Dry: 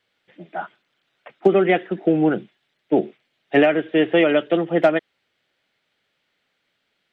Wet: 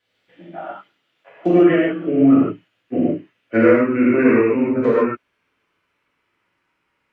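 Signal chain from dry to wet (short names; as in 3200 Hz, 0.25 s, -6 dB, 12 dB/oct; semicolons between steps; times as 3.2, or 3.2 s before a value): gliding pitch shift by -7.5 st starting unshifted; non-linear reverb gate 0.18 s flat, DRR -7 dB; gain -4.5 dB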